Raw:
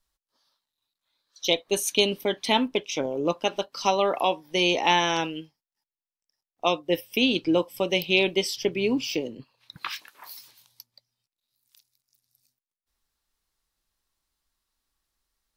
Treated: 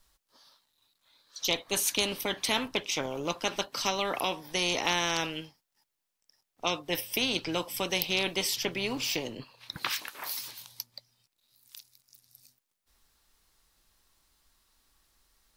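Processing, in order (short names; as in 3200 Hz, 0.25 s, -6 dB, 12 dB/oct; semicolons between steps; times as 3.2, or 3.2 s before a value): spectral compressor 2:1; gain -4 dB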